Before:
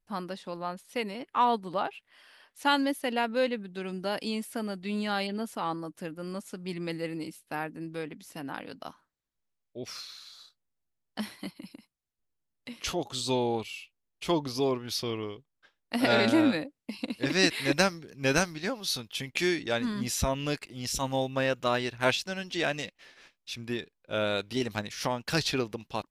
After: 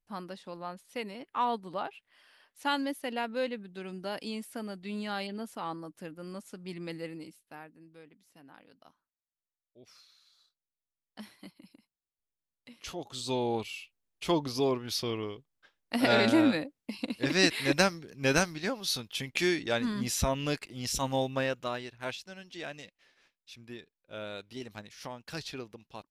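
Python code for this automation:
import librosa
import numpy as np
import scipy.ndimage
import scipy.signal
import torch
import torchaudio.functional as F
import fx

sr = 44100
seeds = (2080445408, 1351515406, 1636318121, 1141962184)

y = fx.gain(x, sr, db=fx.line((7.03, -5.0), (7.84, -17.0), (10.12, -17.0), (11.41, -10.0), (12.79, -10.0), (13.6, -0.5), (21.31, -0.5), (21.93, -11.5)))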